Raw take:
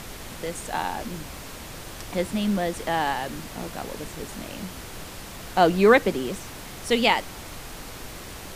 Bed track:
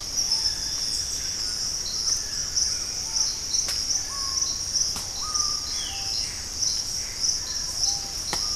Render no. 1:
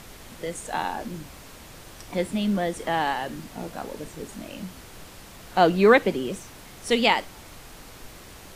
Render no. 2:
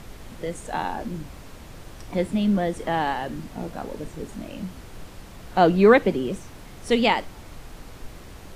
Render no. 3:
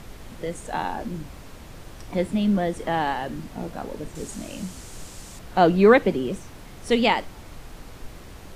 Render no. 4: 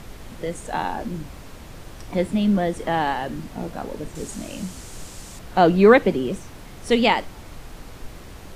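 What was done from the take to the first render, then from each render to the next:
noise reduction from a noise print 6 dB
spectral tilt −1.5 dB per octave
0:04.15–0:05.39: parametric band 7,600 Hz +13.5 dB 1.3 octaves
level +2 dB; brickwall limiter −3 dBFS, peak gain reduction 1 dB

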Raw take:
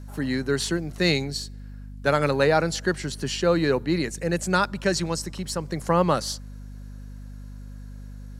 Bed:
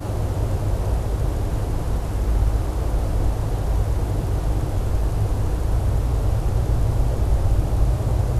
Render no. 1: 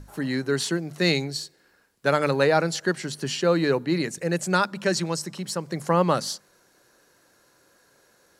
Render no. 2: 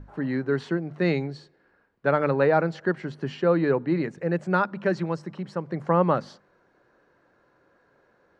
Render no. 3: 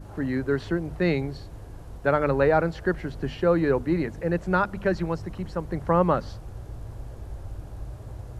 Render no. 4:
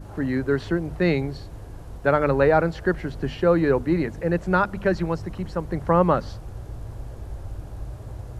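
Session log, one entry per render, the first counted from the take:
mains-hum notches 50/100/150/200/250 Hz
low-pass filter 1,700 Hz 12 dB per octave
mix in bed −18 dB
level +2.5 dB

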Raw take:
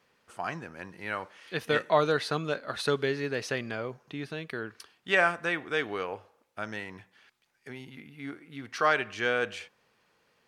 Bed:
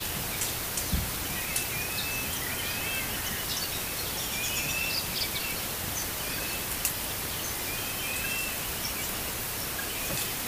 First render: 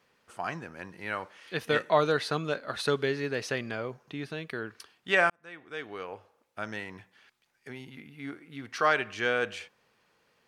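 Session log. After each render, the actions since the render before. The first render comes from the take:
0:05.30–0:06.65: fade in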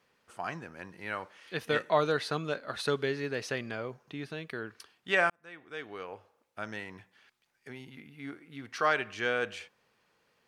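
level −2.5 dB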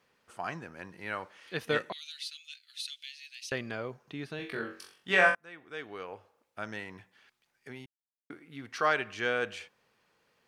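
0:01.92–0:03.52: Butterworth high-pass 2,600 Hz
0:04.37–0:05.35: flutter between parallel walls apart 3.7 metres, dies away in 0.39 s
0:07.86–0:08.30: silence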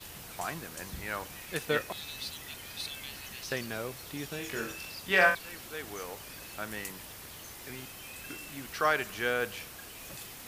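mix in bed −13.5 dB

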